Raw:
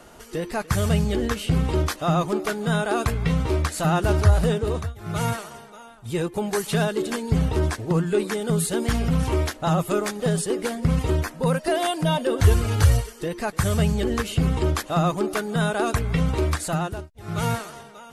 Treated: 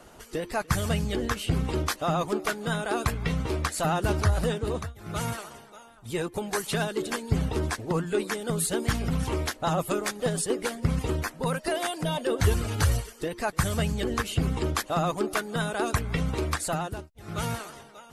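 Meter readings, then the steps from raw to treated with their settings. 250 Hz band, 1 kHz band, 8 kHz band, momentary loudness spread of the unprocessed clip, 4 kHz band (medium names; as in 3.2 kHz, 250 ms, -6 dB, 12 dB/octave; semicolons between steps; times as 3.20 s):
-6.0 dB, -3.0 dB, -1.5 dB, 9 LU, -2.5 dB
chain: harmonic-percussive split harmonic -8 dB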